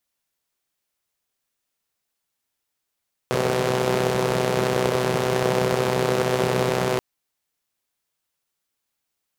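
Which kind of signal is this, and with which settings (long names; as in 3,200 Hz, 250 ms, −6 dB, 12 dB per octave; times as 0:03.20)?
pulse-train model of a four-cylinder engine, steady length 3.68 s, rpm 3,800, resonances 180/410 Hz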